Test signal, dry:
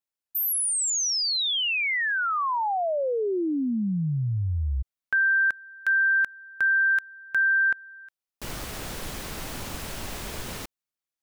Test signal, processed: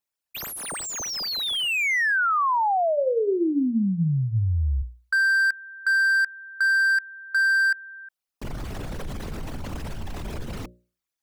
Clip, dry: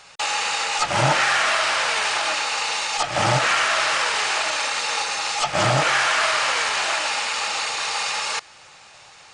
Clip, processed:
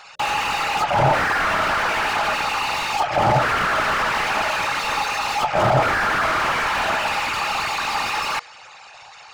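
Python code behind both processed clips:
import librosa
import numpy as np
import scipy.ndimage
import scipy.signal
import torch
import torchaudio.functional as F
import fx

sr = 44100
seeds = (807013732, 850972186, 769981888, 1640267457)

y = fx.envelope_sharpen(x, sr, power=2.0)
y = fx.hum_notches(y, sr, base_hz=60, count=10)
y = fx.slew_limit(y, sr, full_power_hz=110.0)
y = F.gain(torch.from_numpy(y), 4.0).numpy()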